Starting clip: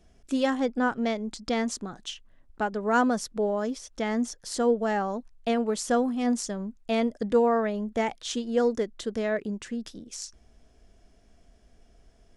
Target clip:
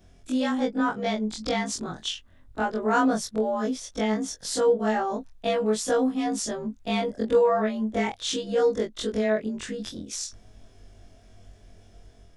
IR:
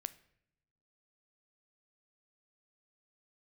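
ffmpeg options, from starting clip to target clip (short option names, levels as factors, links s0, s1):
-filter_complex "[0:a]afftfilt=real='re':imag='-im':win_size=2048:overlap=0.75,equalizer=f=99:w=6.5:g=11,asplit=2[s0][s1];[s1]acompressor=threshold=0.01:ratio=6,volume=1.41[s2];[s0][s2]amix=inputs=2:normalize=0,equalizer=f=3600:w=7.3:g=5,dynaudnorm=f=390:g=3:m=1.41"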